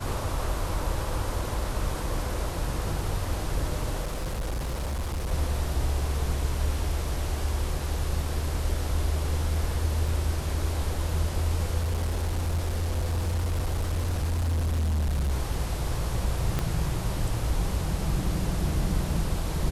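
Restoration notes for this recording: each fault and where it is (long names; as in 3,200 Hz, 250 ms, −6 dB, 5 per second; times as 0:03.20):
0:04.02–0:05.32: clipping −26.5 dBFS
0:10.08: drop-out 2.9 ms
0:11.79–0:15.32: clipping −23 dBFS
0:16.59: click −13 dBFS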